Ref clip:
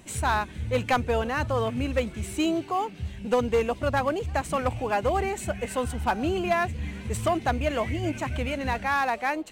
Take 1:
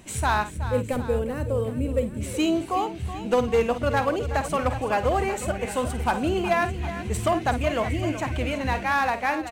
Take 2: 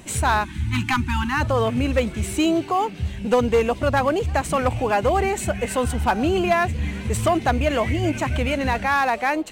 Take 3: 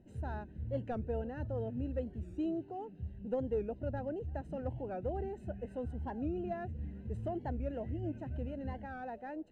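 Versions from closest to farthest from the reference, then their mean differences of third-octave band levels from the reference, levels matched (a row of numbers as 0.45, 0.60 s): 2, 1, 3; 1.5, 3.0, 10.5 dB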